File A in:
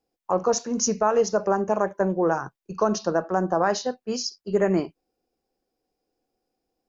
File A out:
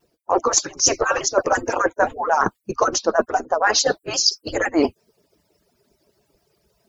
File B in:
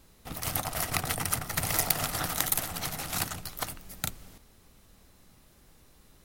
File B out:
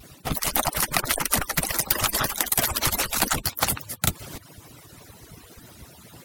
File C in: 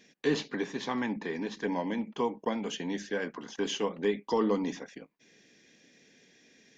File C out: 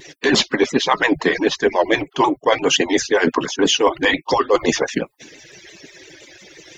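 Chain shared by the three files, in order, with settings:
harmonic-percussive split with one part muted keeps percussive
reversed playback
downward compressor 12 to 1, threshold −37 dBFS
reversed playback
pitch modulation by a square or saw wave saw down 5.8 Hz, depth 100 cents
normalise the peak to −1.5 dBFS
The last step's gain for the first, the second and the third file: +22.5, +18.0, +25.0 decibels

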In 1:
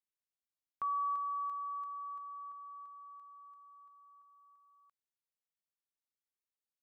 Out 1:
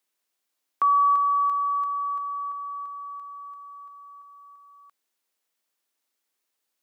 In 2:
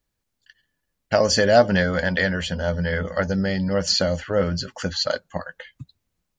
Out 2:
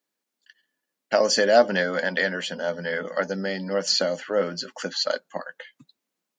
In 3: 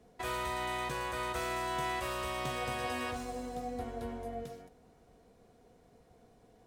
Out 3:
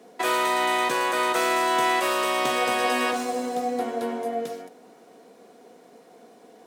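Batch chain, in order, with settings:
high-pass filter 230 Hz 24 dB per octave
loudness normalisation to −24 LKFS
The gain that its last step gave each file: +15.0, −1.5, +13.0 decibels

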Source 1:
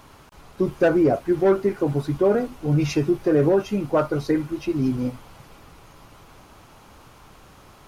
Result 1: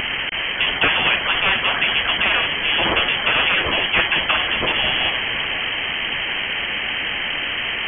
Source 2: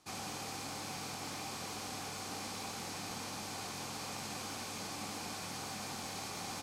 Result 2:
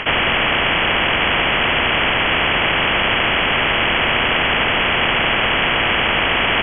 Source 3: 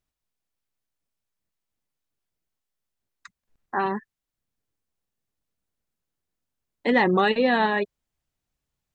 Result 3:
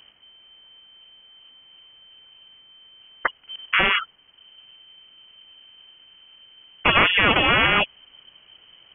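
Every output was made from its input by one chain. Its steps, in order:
voice inversion scrambler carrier 3,100 Hz
every bin compressed towards the loudest bin 4 to 1
normalise the peak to −3 dBFS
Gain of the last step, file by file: +4.5, +28.0, +5.0 decibels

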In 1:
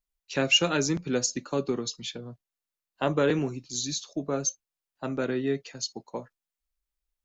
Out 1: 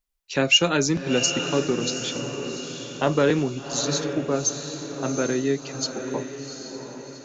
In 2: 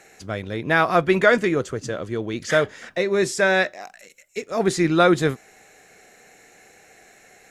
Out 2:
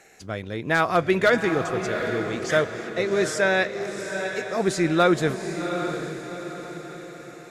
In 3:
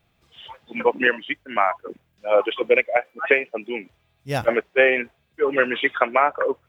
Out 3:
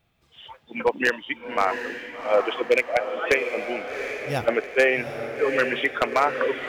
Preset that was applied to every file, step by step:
wave folding −7 dBFS
feedback delay with all-pass diffusion 762 ms, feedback 47%, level −7.5 dB
loudness normalisation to −24 LKFS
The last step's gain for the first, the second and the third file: +4.5, −2.5, −2.5 decibels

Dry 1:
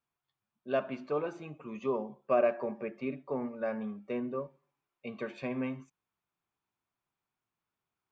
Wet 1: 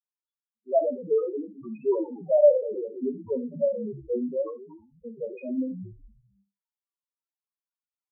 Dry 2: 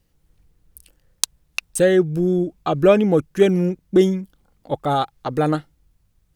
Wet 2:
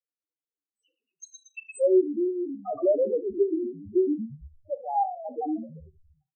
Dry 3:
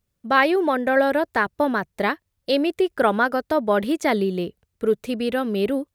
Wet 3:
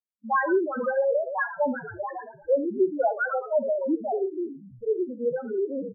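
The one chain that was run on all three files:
brick-wall band-pass 210–8,200 Hz
noise gate with hold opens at −40 dBFS
low-shelf EQ 340 Hz −10.5 dB
on a send: echo with shifted repeats 114 ms, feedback 48%, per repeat −76 Hz, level −8 dB
on the sum: amplitude tremolo 3.6 Hz, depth 53%
spectral peaks only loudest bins 2
reverb whose tail is shaped and stops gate 90 ms flat, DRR 11.5 dB
loudness normalisation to −27 LKFS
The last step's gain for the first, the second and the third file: +16.5, +2.0, +5.0 decibels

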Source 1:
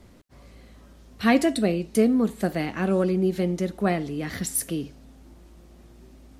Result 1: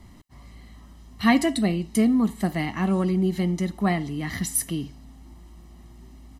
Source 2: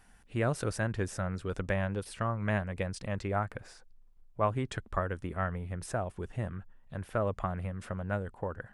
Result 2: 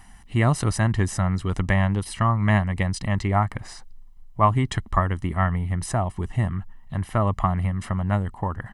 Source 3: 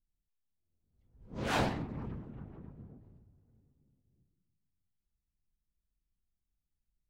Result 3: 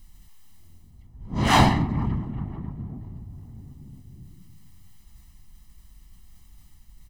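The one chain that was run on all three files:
comb filter 1 ms, depth 68%
reversed playback
upward compression, threshold −44 dBFS
reversed playback
loudness normalisation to −24 LKFS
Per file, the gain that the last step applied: −0.5, +9.0, +12.5 decibels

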